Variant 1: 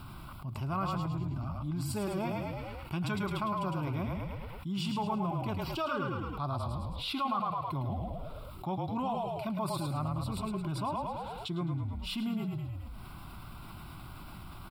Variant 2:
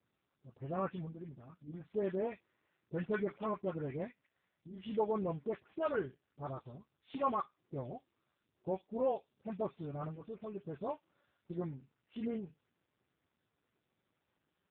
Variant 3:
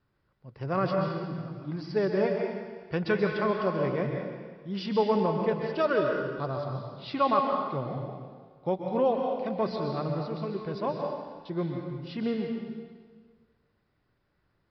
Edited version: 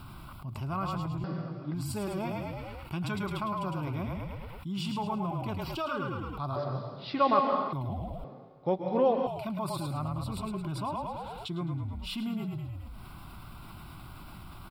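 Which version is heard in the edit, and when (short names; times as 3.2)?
1
1.24–1.74 from 3
6.56–7.73 from 3
8.24–9.27 from 3
not used: 2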